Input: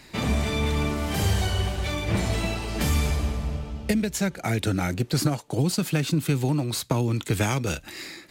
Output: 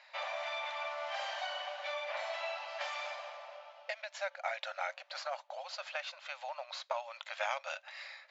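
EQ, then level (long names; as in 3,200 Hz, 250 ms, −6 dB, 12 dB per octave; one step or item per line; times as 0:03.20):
linear-phase brick-wall band-pass 530–7,600 Hz
high-frequency loss of the air 210 metres
−4.5 dB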